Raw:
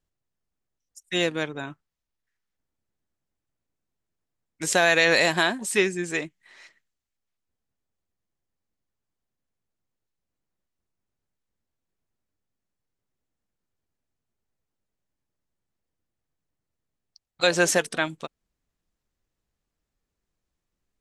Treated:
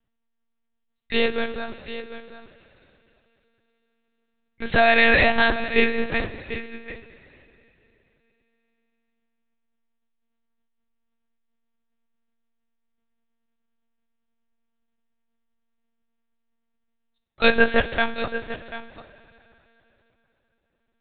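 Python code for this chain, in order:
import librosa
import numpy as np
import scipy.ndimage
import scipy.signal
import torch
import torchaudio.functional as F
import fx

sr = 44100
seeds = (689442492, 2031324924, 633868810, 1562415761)

y = x + 10.0 ** (-13.0 / 20.0) * np.pad(x, (int(741 * sr / 1000.0), 0))[:len(x)]
y = fx.rev_double_slope(y, sr, seeds[0], early_s=0.26, late_s=3.4, knee_db=-18, drr_db=6.0)
y = fx.lpc_monotone(y, sr, seeds[1], pitch_hz=230.0, order=10)
y = F.gain(torch.from_numpy(y), 3.0).numpy()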